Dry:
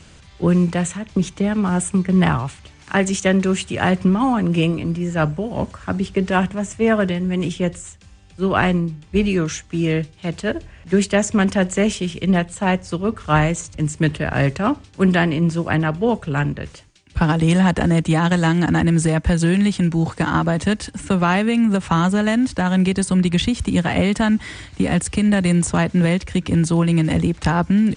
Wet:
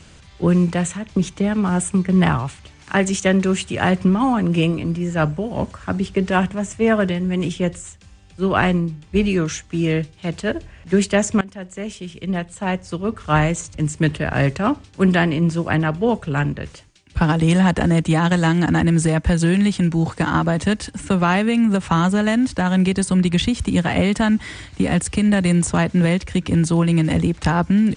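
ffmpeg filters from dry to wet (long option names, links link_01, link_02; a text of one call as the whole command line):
ffmpeg -i in.wav -filter_complex "[0:a]asplit=2[link_01][link_02];[link_01]atrim=end=11.41,asetpts=PTS-STARTPTS,afade=type=out:start_time=11.406:duration=0.004:curve=hsin:silence=0.0944061[link_03];[link_02]atrim=start=11.41,asetpts=PTS-STARTPTS,afade=type=in:duration=2.11:silence=0.0944061[link_04];[link_03][link_04]concat=n=2:v=0:a=1" out.wav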